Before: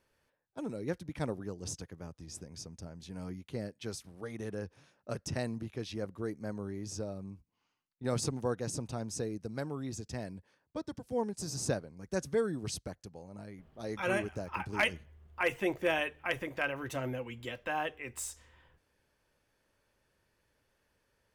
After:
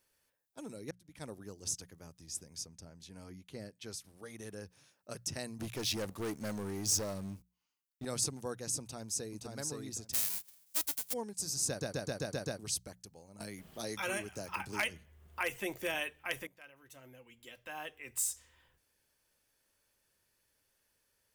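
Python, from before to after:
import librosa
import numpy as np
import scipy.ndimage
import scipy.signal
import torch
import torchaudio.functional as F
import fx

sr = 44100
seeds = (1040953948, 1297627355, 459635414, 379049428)

y = fx.high_shelf(x, sr, hz=6300.0, db=-8.0, at=(2.66, 4.05))
y = fx.leveller(y, sr, passes=3, at=(5.59, 8.05))
y = fx.echo_throw(y, sr, start_s=8.8, length_s=0.65, ms=520, feedback_pct=15, wet_db=-3.0)
y = fx.envelope_flatten(y, sr, power=0.1, at=(10.13, 11.12), fade=0.02)
y = fx.band_squash(y, sr, depth_pct=70, at=(13.4, 15.95))
y = fx.edit(y, sr, fx.fade_in_span(start_s=0.91, length_s=0.52),
    fx.stutter_over(start_s=11.68, slice_s=0.13, count=7),
    fx.fade_in_from(start_s=16.47, length_s=1.73, curve='qua', floor_db=-18.0), tone=tone)
y = librosa.effects.preemphasis(y, coef=0.8, zi=[0.0])
y = fx.hum_notches(y, sr, base_hz=60, count=3)
y = y * 10.0 ** (6.5 / 20.0)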